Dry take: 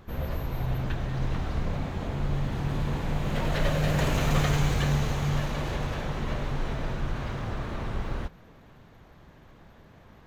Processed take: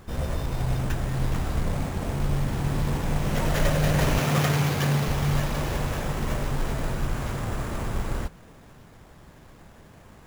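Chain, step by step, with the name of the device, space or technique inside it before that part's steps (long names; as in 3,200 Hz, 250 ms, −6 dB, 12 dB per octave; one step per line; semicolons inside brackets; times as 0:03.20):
early companding sampler (sample-rate reduction 8,700 Hz; log-companded quantiser 6 bits)
0:04.20–0:05.08: high-pass filter 100 Hz 24 dB per octave
level +3 dB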